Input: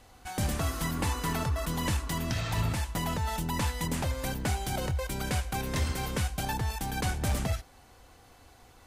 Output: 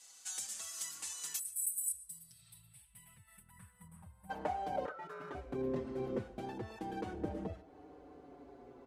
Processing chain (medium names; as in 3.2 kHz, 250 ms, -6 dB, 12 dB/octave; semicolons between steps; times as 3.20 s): 1.34–1.92 s: RIAA curve recording; 1.39–4.30 s: time-frequency box 200–7800 Hz -29 dB; 6.38–7.13 s: tilt shelf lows -4.5 dB; compression 6:1, threshold -37 dBFS, peak gain reduction 12.5 dB; 4.85–5.35 s: ring modulator 1.4 kHz; band-pass sweep 7.3 kHz -> 360 Hz, 1.85–5.23 s; on a send at -18.5 dB: brick-wall FIR low-pass 12 kHz + reverberation RT60 0.20 s, pre-delay 90 ms; on the sum: endless flanger 5.6 ms -0.32 Hz; trim +14.5 dB